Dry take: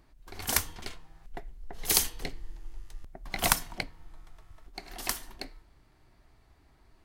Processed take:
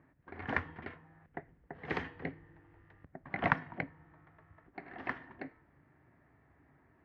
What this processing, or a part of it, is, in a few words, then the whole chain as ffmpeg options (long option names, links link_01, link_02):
bass cabinet: -af "highpass=frequency=76:width=0.5412,highpass=frequency=76:width=1.3066,equalizer=frequency=150:width_type=q:width=4:gain=7,equalizer=frequency=270:width_type=q:width=4:gain=6,equalizer=frequency=510:width_type=q:width=4:gain=3,equalizer=frequency=1800:width_type=q:width=4:gain=7,lowpass=frequency=2100:width=0.5412,lowpass=frequency=2100:width=1.3066,volume=-2.5dB"